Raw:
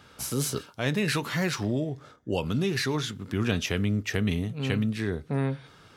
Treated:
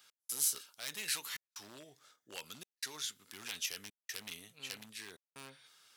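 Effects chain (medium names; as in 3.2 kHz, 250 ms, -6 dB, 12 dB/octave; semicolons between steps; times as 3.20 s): one-sided wavefolder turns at -20 dBFS; trance gate "x..xxxxxxxxxx" 154 bpm -60 dB; differentiator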